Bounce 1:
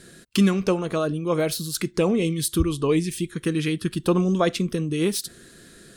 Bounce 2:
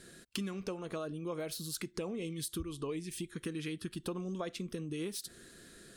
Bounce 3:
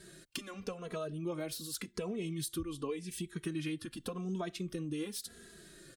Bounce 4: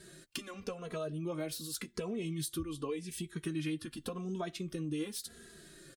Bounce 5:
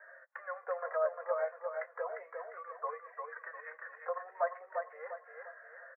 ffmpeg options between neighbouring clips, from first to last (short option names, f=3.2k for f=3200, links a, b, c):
-af "equalizer=f=140:t=o:w=1.3:g=-3,acompressor=threshold=-30dB:ratio=5,volume=-6.5dB"
-filter_complex "[0:a]asplit=2[a][b];[b]adelay=2.7,afreqshift=-0.89[c];[a][c]amix=inputs=2:normalize=1,volume=3dB"
-filter_complex "[0:a]asplit=2[a][b];[b]adelay=13,volume=-12dB[c];[a][c]amix=inputs=2:normalize=0"
-filter_complex "[0:a]asuperpass=centerf=1000:order=20:qfactor=0.7,asplit=2[a][b];[b]aecho=0:1:351|702|1053|1404|1755:0.562|0.219|0.0855|0.0334|0.013[c];[a][c]amix=inputs=2:normalize=0,volume=8.5dB"